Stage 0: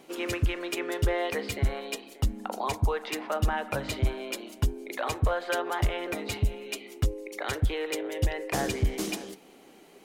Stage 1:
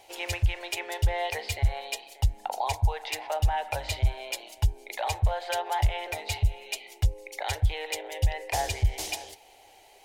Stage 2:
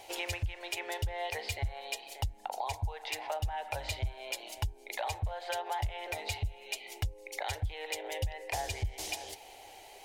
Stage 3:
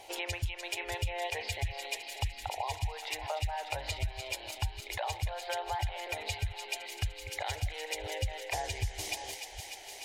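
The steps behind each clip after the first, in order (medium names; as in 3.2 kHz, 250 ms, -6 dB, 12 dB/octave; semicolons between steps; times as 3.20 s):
treble shelf 2.6 kHz -11 dB; compression, threshold -24 dBFS, peak gain reduction 4.5 dB; FFT filter 100 Hz 0 dB, 170 Hz -28 dB, 240 Hz -28 dB, 850 Hz +2 dB, 1.2 kHz -16 dB, 2 kHz -1 dB, 4.9 kHz +6 dB; trim +6.5 dB
compression 3:1, threshold -39 dBFS, peak gain reduction 16 dB; trim +3.5 dB
chunks repeated in reverse 686 ms, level -14 dB; spectral gate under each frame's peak -30 dB strong; feedback echo behind a high-pass 298 ms, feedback 82%, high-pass 2 kHz, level -6.5 dB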